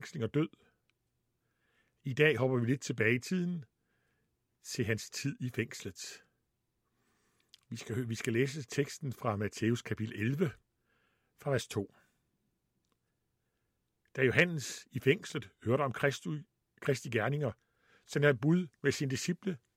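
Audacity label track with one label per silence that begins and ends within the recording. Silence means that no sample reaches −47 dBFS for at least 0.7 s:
0.540000	2.060000	silence
3.630000	4.650000	silence
6.170000	7.540000	silence
10.530000	11.410000	silence
11.850000	14.150000	silence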